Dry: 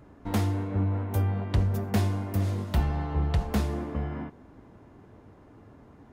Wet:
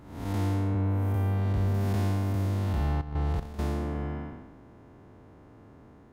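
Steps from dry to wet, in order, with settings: spectral blur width 297 ms; 3.01–3.59 s: level held to a coarse grid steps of 14 dB; trim +1.5 dB

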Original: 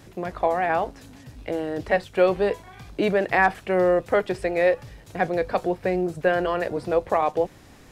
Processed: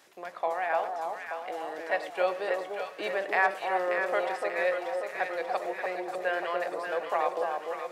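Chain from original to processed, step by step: high-pass 660 Hz 12 dB/octave; echo whose repeats swap between lows and highs 293 ms, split 1.1 kHz, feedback 75%, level -3 dB; on a send at -13 dB: reverberation, pre-delay 3 ms; on the sum: trim -5 dB

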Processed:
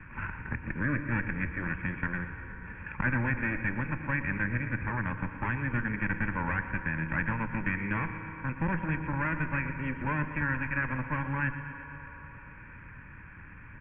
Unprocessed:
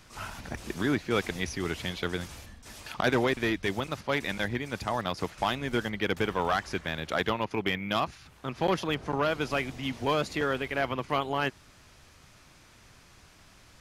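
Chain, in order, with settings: comb filter that takes the minimum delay 1.2 ms; steep low-pass 2.4 kHz 48 dB/octave; in parallel at -2 dB: level held to a coarse grid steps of 21 dB; on the sum: static phaser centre 1.7 kHz, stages 4; feedback delay 119 ms, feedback 59%, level -13 dB; on a send at -10.5 dB: reverberation RT60 3.3 s, pre-delay 3 ms; on the sum: three bands compressed up and down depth 40%

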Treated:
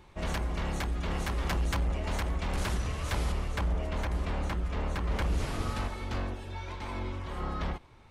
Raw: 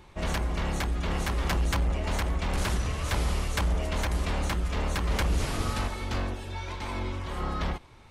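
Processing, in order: treble shelf 3.5 kHz -2 dB, from 3.32 s -11 dB, from 5.22 s -5.5 dB; trim -3 dB

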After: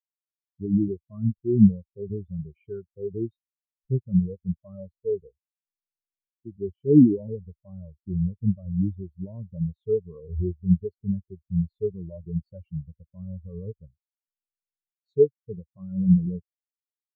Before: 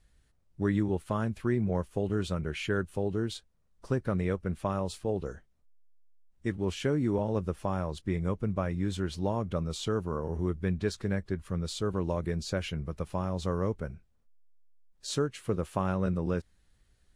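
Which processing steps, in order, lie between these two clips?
loudness maximiser +20.5 dB; spectral contrast expander 4:1; trim -4 dB

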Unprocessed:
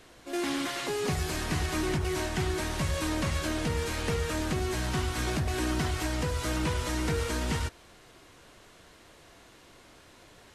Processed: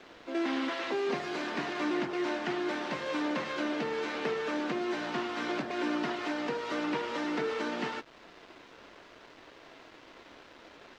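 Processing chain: high-pass 250 Hz 24 dB/octave; in parallel at -2.5 dB: compression 6:1, threshold -44 dBFS, peak gain reduction 15.5 dB; on the sum: word length cut 8-bit, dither none; distance through air 200 m; speed mistake 25 fps video run at 24 fps

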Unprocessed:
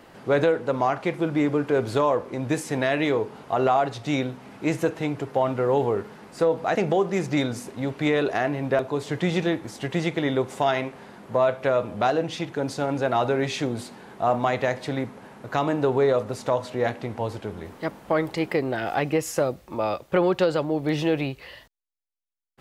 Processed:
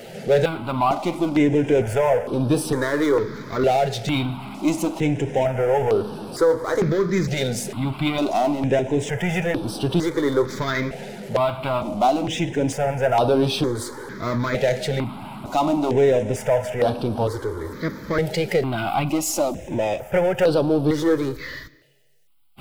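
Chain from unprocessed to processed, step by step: coarse spectral quantiser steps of 15 dB; power-law waveshaper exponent 0.7; on a send at -20.5 dB: reverberation RT60 1.3 s, pre-delay 65 ms; on the sum: stepped phaser 2.2 Hz 290–6900 Hz; trim +3 dB

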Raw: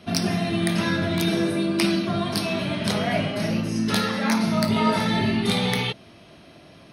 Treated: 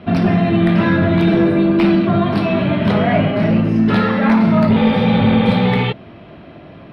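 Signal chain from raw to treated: sine folder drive 8 dB, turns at -5.5 dBFS; spectral replace 4.79–5.57 s, 300–3800 Hz after; distance through air 500 m

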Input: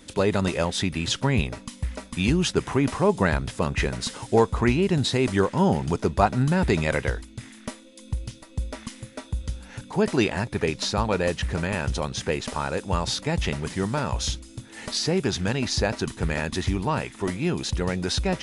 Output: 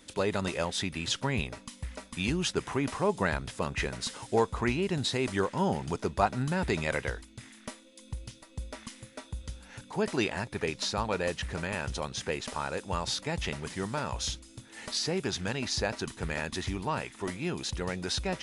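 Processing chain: bass shelf 410 Hz -5.5 dB; trim -4.5 dB

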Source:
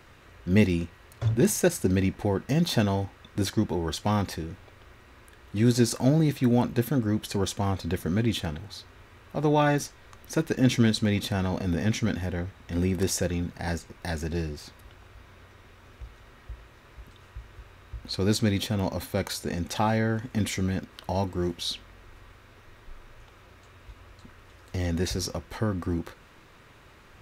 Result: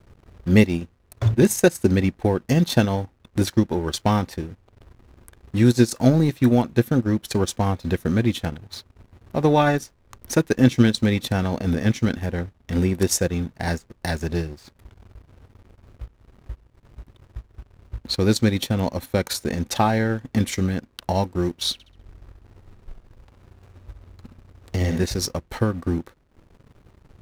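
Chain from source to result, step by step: treble shelf 6.5 kHz +5 dB; hysteresis with a dead band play -43.5 dBFS; transient shaper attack +3 dB, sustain -11 dB; 21.73–25.06 s: flutter echo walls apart 11.3 m, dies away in 0.52 s; trim +4.5 dB

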